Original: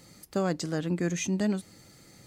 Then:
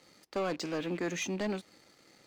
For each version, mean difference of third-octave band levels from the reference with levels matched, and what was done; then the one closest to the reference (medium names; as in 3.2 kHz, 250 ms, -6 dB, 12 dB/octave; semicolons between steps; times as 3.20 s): 4.5 dB: rattle on loud lows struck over -38 dBFS, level -39 dBFS; three-band isolator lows -16 dB, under 260 Hz, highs -21 dB, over 6 kHz; waveshaping leveller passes 2; trim -6 dB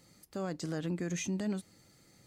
1.5 dB: peak limiter -26 dBFS, peak gain reduction 9.5 dB; upward expansion 1.5:1, over -47 dBFS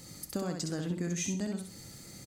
6.5 dB: tone controls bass +5 dB, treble +7 dB; compression, threshold -32 dBFS, peak gain reduction 11 dB; on a send: feedback delay 65 ms, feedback 28%, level -5 dB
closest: second